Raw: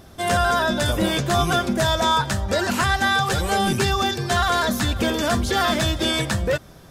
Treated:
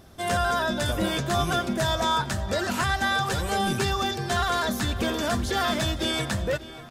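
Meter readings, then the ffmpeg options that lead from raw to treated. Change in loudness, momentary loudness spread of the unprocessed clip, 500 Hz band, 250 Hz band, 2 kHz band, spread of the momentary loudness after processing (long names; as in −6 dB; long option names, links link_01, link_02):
−5.0 dB, 3 LU, −5.0 dB, −5.0 dB, −5.0 dB, 3 LU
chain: -filter_complex "[0:a]asplit=2[link_01][link_02];[link_02]adelay=589,lowpass=frequency=3700:poles=1,volume=-15dB,asplit=2[link_03][link_04];[link_04]adelay=589,lowpass=frequency=3700:poles=1,volume=0.46,asplit=2[link_05][link_06];[link_06]adelay=589,lowpass=frequency=3700:poles=1,volume=0.46,asplit=2[link_07][link_08];[link_08]adelay=589,lowpass=frequency=3700:poles=1,volume=0.46[link_09];[link_01][link_03][link_05][link_07][link_09]amix=inputs=5:normalize=0,volume=-5dB"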